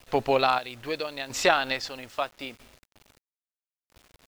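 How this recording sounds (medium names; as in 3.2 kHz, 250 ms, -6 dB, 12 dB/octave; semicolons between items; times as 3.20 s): chopped level 0.77 Hz, depth 65%, duty 45%; a quantiser's noise floor 10-bit, dither none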